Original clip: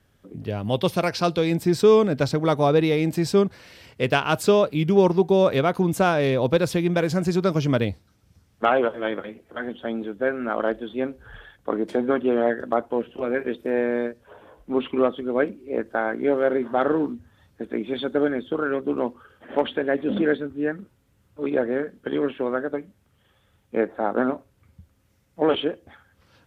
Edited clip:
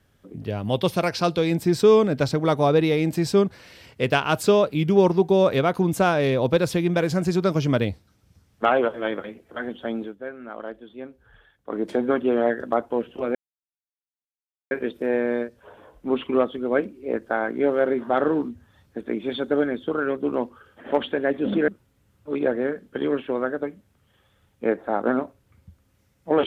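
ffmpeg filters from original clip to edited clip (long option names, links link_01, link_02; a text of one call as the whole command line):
ffmpeg -i in.wav -filter_complex "[0:a]asplit=5[link_01][link_02][link_03][link_04][link_05];[link_01]atrim=end=10.16,asetpts=PTS-STARTPTS,afade=type=out:start_time=9.96:duration=0.2:curve=qsin:silence=0.281838[link_06];[link_02]atrim=start=10.16:end=11.67,asetpts=PTS-STARTPTS,volume=-11dB[link_07];[link_03]atrim=start=11.67:end=13.35,asetpts=PTS-STARTPTS,afade=type=in:duration=0.2:curve=qsin:silence=0.281838,afade=type=out:start_time=1.676:duration=0.004:curve=hsin,apad=pad_dur=1.36[link_08];[link_04]atrim=start=13.35:end=20.322,asetpts=PTS-STARTPTS,afade=type=in:duration=0.004:curve=hsin[link_09];[link_05]atrim=start=20.788[link_10];[link_06][link_07][link_08][link_09]concat=n=4:v=0:a=1[link_11];[link_11][link_10]acrossfade=duration=0.004:curve1=hsin:curve2=hsin" out.wav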